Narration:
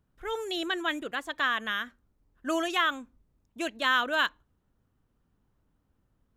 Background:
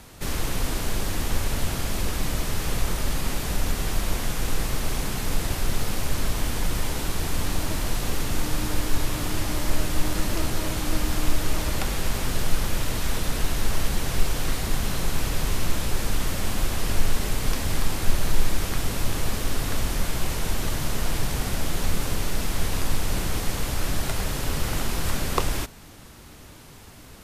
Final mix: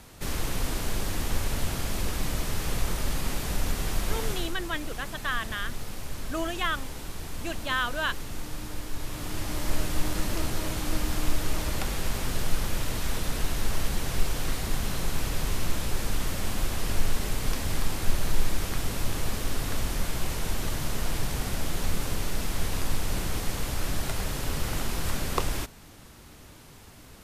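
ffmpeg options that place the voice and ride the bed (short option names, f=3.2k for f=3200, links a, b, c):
-filter_complex "[0:a]adelay=3850,volume=-3dB[a];[1:a]volume=4dB,afade=t=out:st=4.32:d=0.21:silence=0.421697,afade=t=in:st=8.95:d=0.79:silence=0.446684[b];[a][b]amix=inputs=2:normalize=0"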